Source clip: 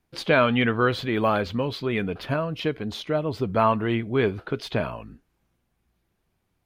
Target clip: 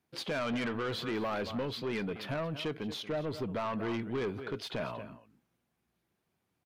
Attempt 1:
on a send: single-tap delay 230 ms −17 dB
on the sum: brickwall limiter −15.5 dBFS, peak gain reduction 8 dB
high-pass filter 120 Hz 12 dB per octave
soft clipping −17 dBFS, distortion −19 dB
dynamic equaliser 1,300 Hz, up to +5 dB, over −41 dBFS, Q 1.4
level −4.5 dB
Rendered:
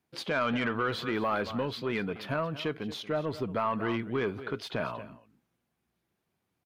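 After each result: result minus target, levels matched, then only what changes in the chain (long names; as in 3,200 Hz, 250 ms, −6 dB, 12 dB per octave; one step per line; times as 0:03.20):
soft clipping: distortion −8 dB; 1,000 Hz band +2.5 dB
change: soft clipping −24.5 dBFS, distortion −10 dB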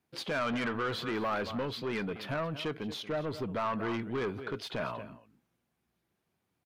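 1,000 Hz band +2.5 dB
remove: dynamic equaliser 1,300 Hz, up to +5 dB, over −41 dBFS, Q 1.4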